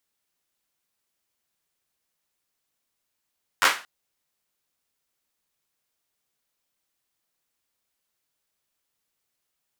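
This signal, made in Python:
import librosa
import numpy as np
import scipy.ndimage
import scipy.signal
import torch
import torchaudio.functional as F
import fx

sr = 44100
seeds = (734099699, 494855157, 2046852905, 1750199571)

y = fx.drum_clap(sr, seeds[0], length_s=0.23, bursts=4, spacing_ms=10, hz=1500.0, decay_s=0.32)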